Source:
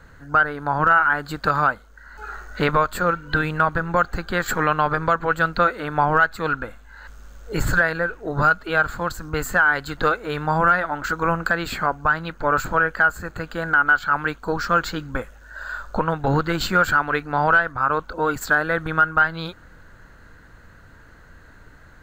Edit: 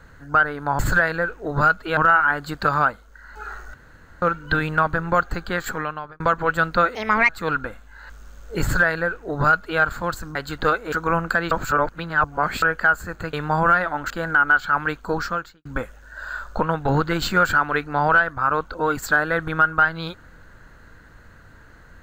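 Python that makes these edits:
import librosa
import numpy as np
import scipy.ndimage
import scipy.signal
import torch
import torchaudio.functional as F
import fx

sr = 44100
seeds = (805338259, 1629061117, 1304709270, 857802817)

y = fx.edit(x, sr, fx.room_tone_fill(start_s=2.56, length_s=0.48),
    fx.fade_out_span(start_s=4.18, length_s=0.84),
    fx.speed_span(start_s=5.77, length_s=0.5, speed=1.46),
    fx.duplicate(start_s=7.6, length_s=1.18, to_s=0.79),
    fx.cut(start_s=9.33, length_s=0.41),
    fx.move(start_s=10.31, length_s=0.77, to_s=13.49),
    fx.reverse_span(start_s=11.67, length_s=1.11),
    fx.fade_out_span(start_s=14.6, length_s=0.44, curve='qua'), tone=tone)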